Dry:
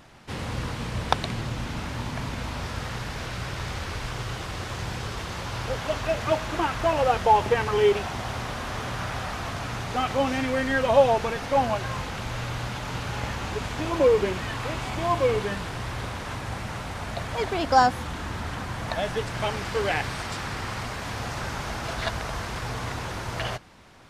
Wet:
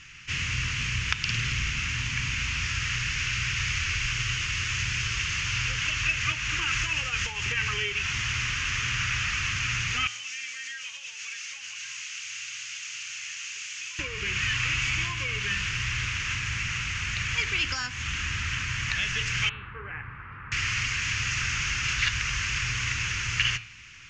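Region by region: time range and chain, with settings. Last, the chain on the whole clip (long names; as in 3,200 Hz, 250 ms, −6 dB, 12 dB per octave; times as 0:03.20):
0:01.21–0:01.70: flutter between parallel walls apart 8.9 metres, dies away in 0.73 s + highs frequency-modulated by the lows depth 0.63 ms
0:06.62–0:07.45: high-shelf EQ 7,600 Hz +7.5 dB + downward compressor 2 to 1, threshold −23 dBFS
0:10.07–0:13.99: first difference + downward compressor, threshold −41 dBFS
0:19.49–0:20.52: low-pass filter 1,200 Hz 24 dB per octave + low-shelf EQ 340 Hz −9 dB
whole clip: hum removal 111.6 Hz, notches 39; downward compressor 4 to 1, threshold −25 dBFS; drawn EQ curve 130 Hz 0 dB, 200 Hz −10 dB, 440 Hz −16 dB, 680 Hz −29 dB, 1,200 Hz −3 dB, 2,700 Hz +15 dB, 3,800 Hz 0 dB, 6,700 Hz +12 dB, 11,000 Hz −30 dB; level +1 dB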